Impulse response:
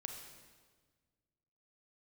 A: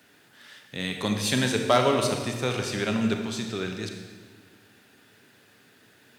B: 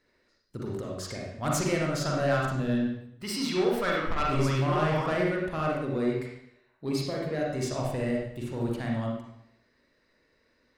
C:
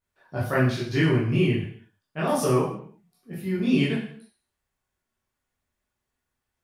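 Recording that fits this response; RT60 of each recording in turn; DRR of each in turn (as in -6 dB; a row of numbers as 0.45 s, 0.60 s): A; 1.5 s, 0.75 s, 0.55 s; 3.5 dB, -2.5 dB, -8.0 dB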